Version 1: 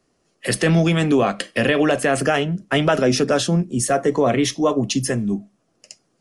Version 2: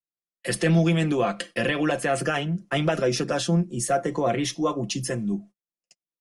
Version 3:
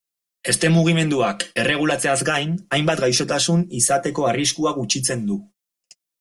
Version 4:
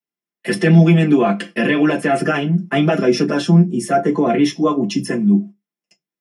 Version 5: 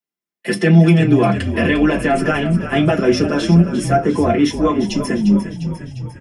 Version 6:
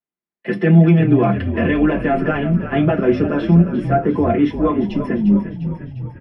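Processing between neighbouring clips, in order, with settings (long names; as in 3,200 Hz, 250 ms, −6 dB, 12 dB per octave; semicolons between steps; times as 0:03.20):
noise gate −38 dBFS, range −36 dB; comb filter 5.8 ms, depth 61%; level −7 dB
high-shelf EQ 2,800 Hz +9 dB; level +3.5 dB
convolution reverb RT60 0.15 s, pre-delay 3 ms, DRR −2.5 dB; level −13 dB
echo with shifted repeats 351 ms, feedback 60%, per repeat −39 Hz, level −10.5 dB
high-frequency loss of the air 450 metres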